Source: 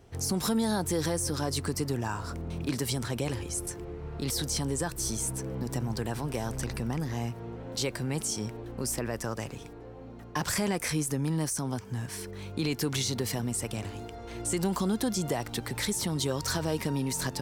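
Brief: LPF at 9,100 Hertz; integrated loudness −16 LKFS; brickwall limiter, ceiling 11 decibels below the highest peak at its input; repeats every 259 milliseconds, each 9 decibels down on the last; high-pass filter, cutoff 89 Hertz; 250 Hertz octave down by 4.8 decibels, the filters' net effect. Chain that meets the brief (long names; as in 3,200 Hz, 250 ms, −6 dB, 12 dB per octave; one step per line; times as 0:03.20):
high-pass filter 89 Hz
low-pass filter 9,100 Hz
parametric band 250 Hz −6.5 dB
brickwall limiter −29.5 dBFS
repeating echo 259 ms, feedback 35%, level −9 dB
level +22.5 dB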